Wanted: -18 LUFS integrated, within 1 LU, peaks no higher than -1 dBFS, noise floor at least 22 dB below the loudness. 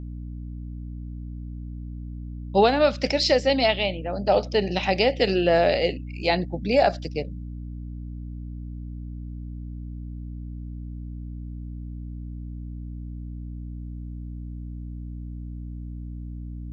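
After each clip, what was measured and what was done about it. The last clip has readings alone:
hum 60 Hz; highest harmonic 300 Hz; hum level -32 dBFS; loudness -22.5 LUFS; peak level -6.5 dBFS; loudness target -18.0 LUFS
-> de-hum 60 Hz, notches 5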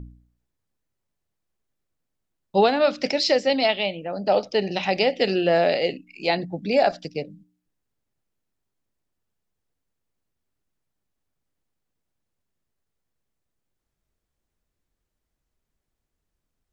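hum not found; loudness -22.5 LUFS; peak level -6.5 dBFS; loudness target -18.0 LUFS
-> trim +4.5 dB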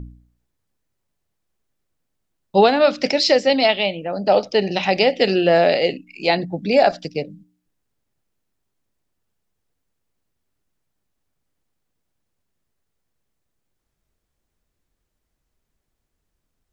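loudness -18.0 LUFS; peak level -2.0 dBFS; noise floor -77 dBFS

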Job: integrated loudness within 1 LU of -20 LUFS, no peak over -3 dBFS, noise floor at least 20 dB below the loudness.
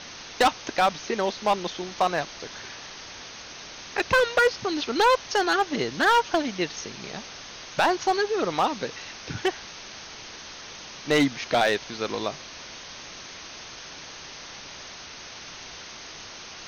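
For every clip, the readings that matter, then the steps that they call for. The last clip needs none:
clipped samples 0.8%; clipping level -14.5 dBFS; noise floor -42 dBFS; noise floor target -45 dBFS; loudness -25.0 LUFS; peak level -14.5 dBFS; loudness target -20.0 LUFS
-> clip repair -14.5 dBFS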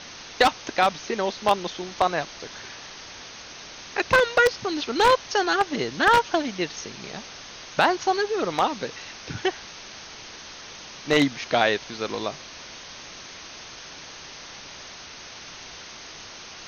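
clipped samples 0.0%; noise floor -42 dBFS; noise floor target -44 dBFS
-> noise reduction 6 dB, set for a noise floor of -42 dBFS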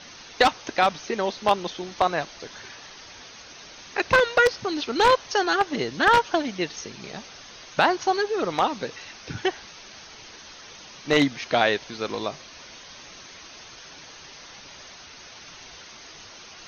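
noise floor -45 dBFS; loudness -23.5 LUFS; peak level -5.5 dBFS; loudness target -20.0 LUFS
-> trim +3.5 dB; peak limiter -3 dBFS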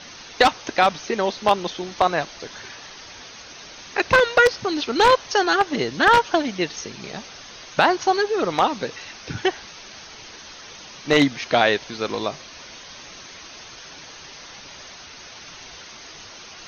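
loudness -20.5 LUFS; peak level -3.0 dBFS; noise floor -42 dBFS

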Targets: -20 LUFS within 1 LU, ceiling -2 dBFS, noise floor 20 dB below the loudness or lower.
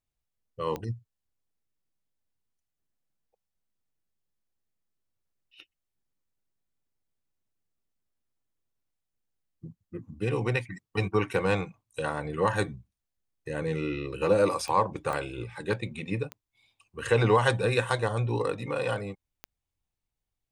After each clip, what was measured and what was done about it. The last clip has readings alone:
clicks found 5; loudness -29.0 LUFS; peak level -10.0 dBFS; loudness target -20.0 LUFS
-> de-click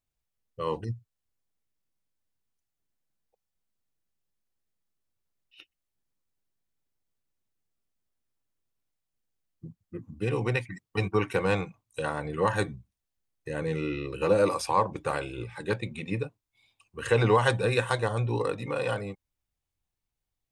clicks found 0; loudness -29.0 LUFS; peak level -10.0 dBFS; loudness target -20.0 LUFS
-> trim +9 dB; peak limiter -2 dBFS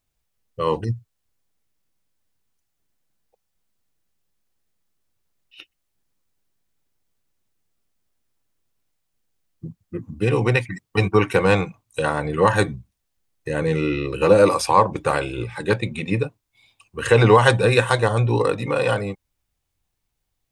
loudness -20.0 LUFS; peak level -2.0 dBFS; noise floor -77 dBFS

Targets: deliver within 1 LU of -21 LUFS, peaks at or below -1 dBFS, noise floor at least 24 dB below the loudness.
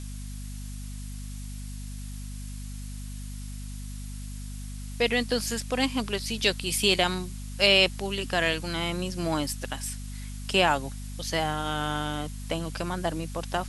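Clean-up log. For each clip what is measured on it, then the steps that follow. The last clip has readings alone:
hum 50 Hz; highest harmonic 250 Hz; hum level -35 dBFS; noise floor -37 dBFS; noise floor target -51 dBFS; loudness -27.0 LUFS; peak level -6.0 dBFS; loudness target -21.0 LUFS
-> de-hum 50 Hz, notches 5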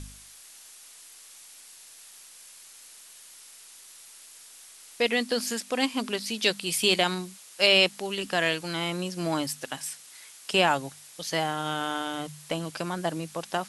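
hum not found; noise floor -50 dBFS; noise floor target -51 dBFS
-> noise reduction 6 dB, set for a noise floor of -50 dBFS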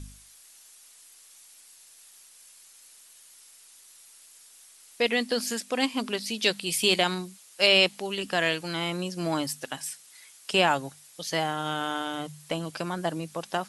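noise floor -54 dBFS; loudness -27.0 LUFS; peak level -6.0 dBFS; loudness target -21.0 LUFS
-> trim +6 dB; peak limiter -1 dBFS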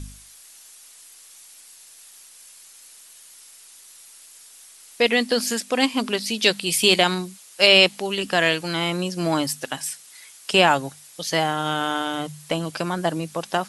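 loudness -21.0 LUFS; peak level -1.0 dBFS; noise floor -48 dBFS

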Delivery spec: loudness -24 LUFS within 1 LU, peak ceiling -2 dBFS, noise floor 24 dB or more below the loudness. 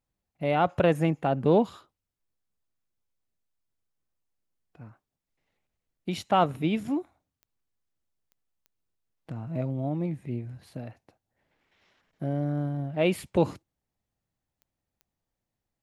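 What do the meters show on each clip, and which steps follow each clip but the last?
clicks found 5; loudness -27.5 LUFS; peak level -10.0 dBFS; loudness target -24.0 LUFS
-> de-click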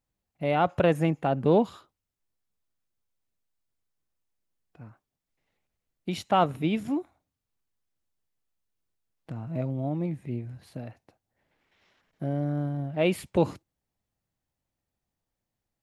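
clicks found 0; loudness -27.5 LUFS; peak level -10.0 dBFS; loudness target -24.0 LUFS
-> trim +3.5 dB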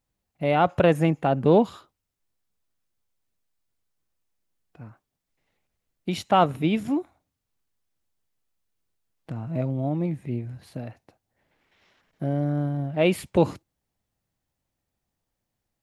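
loudness -24.0 LUFS; peak level -6.5 dBFS; noise floor -83 dBFS

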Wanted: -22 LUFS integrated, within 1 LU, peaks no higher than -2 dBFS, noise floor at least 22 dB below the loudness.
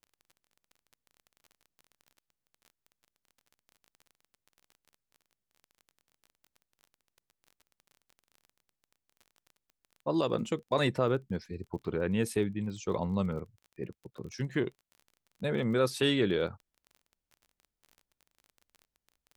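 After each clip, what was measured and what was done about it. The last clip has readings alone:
tick rate 26 per s; loudness -32.0 LUFS; peak level -15.0 dBFS; loudness target -22.0 LUFS
-> de-click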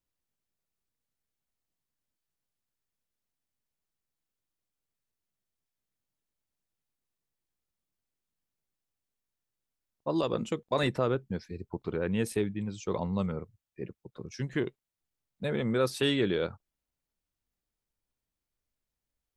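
tick rate 0 per s; loudness -31.5 LUFS; peak level -15.0 dBFS; loudness target -22.0 LUFS
-> trim +9.5 dB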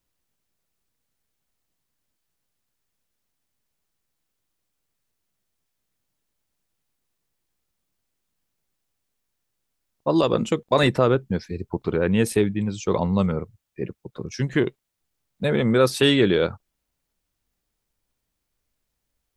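loudness -22.0 LUFS; peak level -5.5 dBFS; noise floor -79 dBFS

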